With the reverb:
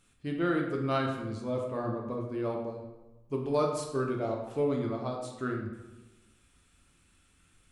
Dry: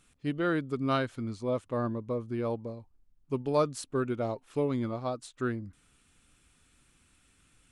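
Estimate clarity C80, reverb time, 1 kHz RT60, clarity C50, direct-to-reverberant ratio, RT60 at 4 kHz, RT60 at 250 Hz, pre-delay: 6.5 dB, 1.1 s, 1.1 s, 4.5 dB, 0.5 dB, 0.75 s, 1.3 s, 7 ms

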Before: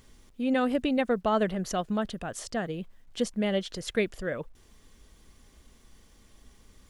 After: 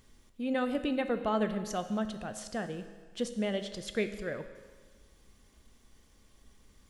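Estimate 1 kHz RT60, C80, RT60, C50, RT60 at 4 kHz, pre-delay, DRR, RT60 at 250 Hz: 1.5 s, 12.0 dB, 1.5 s, 10.5 dB, 1.5 s, 9 ms, 8.5 dB, 1.5 s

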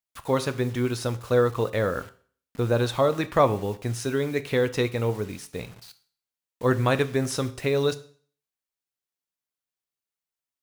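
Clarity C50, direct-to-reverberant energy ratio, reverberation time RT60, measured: 16.5 dB, 11.0 dB, 0.45 s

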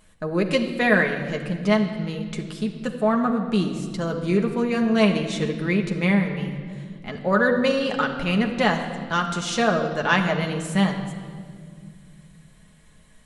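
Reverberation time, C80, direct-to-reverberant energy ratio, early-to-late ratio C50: 2.0 s, 9.0 dB, 2.0 dB, 8.0 dB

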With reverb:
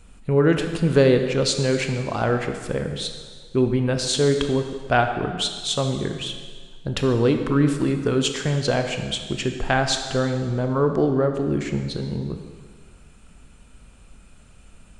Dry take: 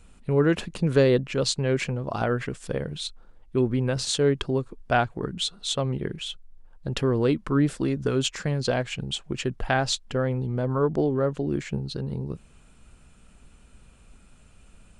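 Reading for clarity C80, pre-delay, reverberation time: 8.0 dB, 18 ms, 1.7 s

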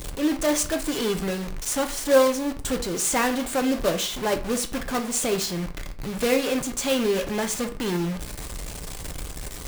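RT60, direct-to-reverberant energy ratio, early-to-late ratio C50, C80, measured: 0.45 s, 6.0 dB, 13.5 dB, 18.5 dB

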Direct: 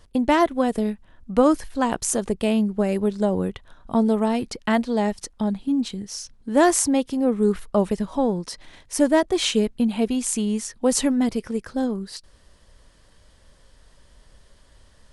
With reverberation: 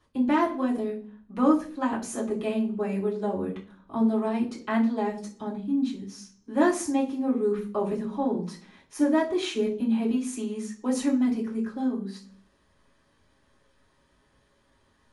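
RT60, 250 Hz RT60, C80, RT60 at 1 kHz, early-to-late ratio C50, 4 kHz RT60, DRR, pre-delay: 0.40 s, 0.70 s, 15.0 dB, 0.35 s, 11.0 dB, 0.45 s, −7.0 dB, 3 ms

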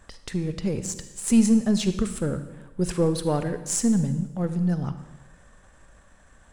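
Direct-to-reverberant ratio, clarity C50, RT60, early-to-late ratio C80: 10.0 dB, 10.5 dB, 1.0 s, 12.5 dB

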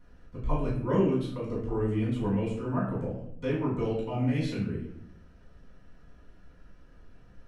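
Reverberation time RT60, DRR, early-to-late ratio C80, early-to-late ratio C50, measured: 0.70 s, −8.0 dB, 7.5 dB, 3.5 dB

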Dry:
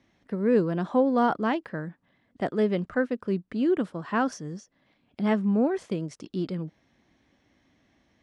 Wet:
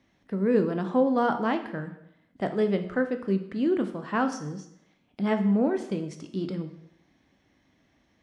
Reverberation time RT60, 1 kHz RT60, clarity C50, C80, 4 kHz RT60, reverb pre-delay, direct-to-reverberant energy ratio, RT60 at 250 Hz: 0.75 s, 0.75 s, 11.0 dB, 13.5 dB, 0.70 s, 6 ms, 7.0 dB, 0.75 s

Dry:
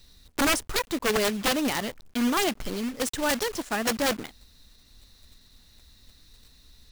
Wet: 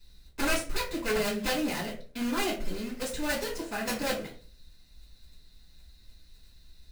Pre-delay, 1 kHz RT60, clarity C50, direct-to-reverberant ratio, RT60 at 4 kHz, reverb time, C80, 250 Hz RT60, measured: 3 ms, 0.30 s, 8.5 dB, −8.0 dB, 0.25 s, 0.40 s, 13.0 dB, 0.50 s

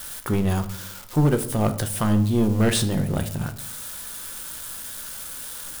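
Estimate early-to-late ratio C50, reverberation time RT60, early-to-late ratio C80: 13.5 dB, 0.70 s, 16.5 dB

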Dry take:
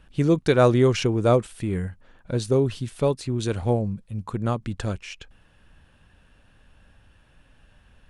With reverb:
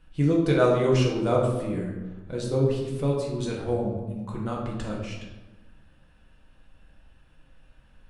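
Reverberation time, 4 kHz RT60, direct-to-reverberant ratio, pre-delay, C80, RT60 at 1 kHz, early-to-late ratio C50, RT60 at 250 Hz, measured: 1.2 s, 0.70 s, −3.5 dB, 3 ms, 5.0 dB, 1.1 s, 2.5 dB, 1.6 s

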